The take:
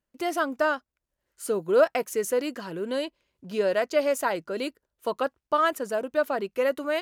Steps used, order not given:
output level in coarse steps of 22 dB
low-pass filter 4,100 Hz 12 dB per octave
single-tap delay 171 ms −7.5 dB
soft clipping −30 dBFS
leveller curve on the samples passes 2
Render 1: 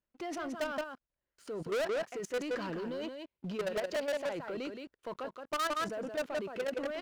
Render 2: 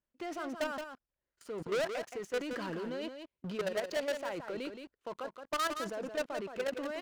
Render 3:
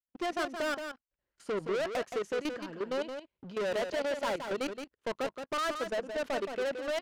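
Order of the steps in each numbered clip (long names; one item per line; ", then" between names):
low-pass filter, then output level in coarse steps, then single-tap delay, then soft clipping, then leveller curve on the samples
output level in coarse steps, then low-pass filter, then leveller curve on the samples, then soft clipping, then single-tap delay
leveller curve on the samples, then output level in coarse steps, then low-pass filter, then soft clipping, then single-tap delay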